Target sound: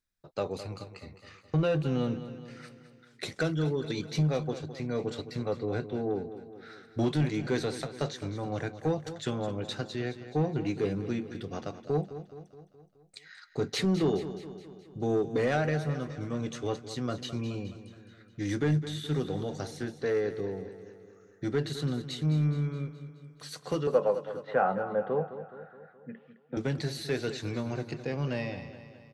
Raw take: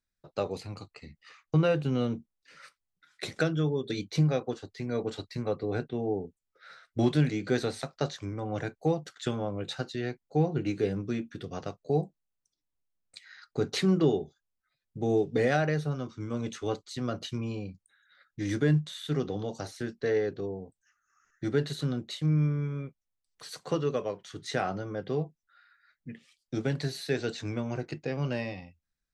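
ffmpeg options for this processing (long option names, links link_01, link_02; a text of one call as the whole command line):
ffmpeg -i in.wav -filter_complex "[0:a]asoftclip=type=tanh:threshold=-19.5dB,asettb=1/sr,asplit=3[link_01][link_02][link_03];[link_01]atrim=end=23.874[link_04];[link_02]atrim=start=23.87:end=26.57,asetpts=PTS-STARTPTS,afade=type=in:duration=0.004:curve=qsin,afade=type=out:start_time=2.696:duration=0.004:curve=qsin,highpass=190,equalizer=frequency=200:width_type=q:width=4:gain=6,equalizer=frequency=320:width_type=q:width=4:gain=-7,equalizer=frequency=520:width_type=q:width=4:gain=10,equalizer=frequency=850:width_type=q:width=4:gain=10,equalizer=frequency=1400:width_type=q:width=4:gain=6,equalizer=frequency=2200:width_type=q:width=4:gain=-7,lowpass=frequency=2400:width=0.5412,lowpass=frequency=2400:width=1.3066[link_05];[link_03]atrim=start=26.566[link_06];[link_04][link_05]acrossfade=duration=0.004:curve1=hsin:curve2=qsin[link_07];[link_07][link_06]acrossfade=duration=0.004:curve1=qsin:curve2=hsin,aecho=1:1:211|422|633|844|1055|1266:0.237|0.13|0.0717|0.0395|0.0217|0.0119" out.wav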